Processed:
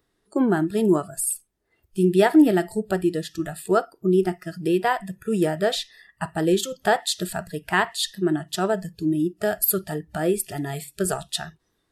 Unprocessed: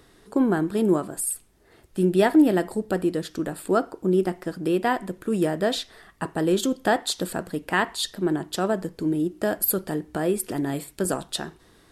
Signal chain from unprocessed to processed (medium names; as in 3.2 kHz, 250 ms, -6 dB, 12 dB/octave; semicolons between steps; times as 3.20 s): spectral noise reduction 19 dB; trim +2 dB